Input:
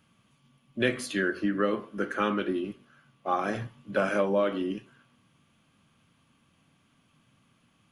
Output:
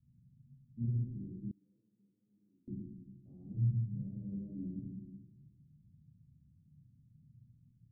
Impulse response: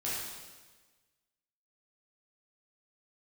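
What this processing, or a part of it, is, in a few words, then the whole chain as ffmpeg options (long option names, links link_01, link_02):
club heard from the street: -filter_complex "[0:a]alimiter=limit=-24dB:level=0:latency=1:release=39,lowpass=frequency=160:width=0.5412,lowpass=frequency=160:width=1.3066[link_01];[1:a]atrim=start_sample=2205[link_02];[link_01][link_02]afir=irnorm=-1:irlink=0,asettb=1/sr,asplit=3[link_03][link_04][link_05];[link_03]atrim=end=1.514[link_06];[link_04]atrim=start=1.51:end=2.68,asetpts=PTS-STARTPTS,afade=type=in:duration=0.004:curve=qsin,afade=type=out:start_time=1.166:duration=0.004:curve=qsin,aderivative[link_07];[link_05]atrim=start=2.676[link_08];[link_06][link_07]acrossfade=duration=0.004:curve1=hsin:curve2=qsin[link_09];[link_09][link_08]acrossfade=duration=0.004:curve1=qsin:curve2=hsin,volume=2.5dB"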